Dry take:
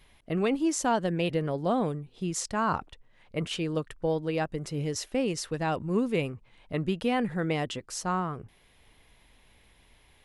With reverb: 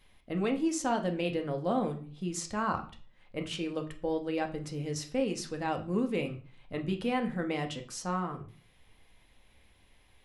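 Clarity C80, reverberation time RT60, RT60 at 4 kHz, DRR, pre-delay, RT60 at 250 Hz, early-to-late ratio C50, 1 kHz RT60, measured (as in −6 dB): 17.0 dB, 0.40 s, 0.35 s, 4.0 dB, 4 ms, 0.50 s, 13.0 dB, 0.40 s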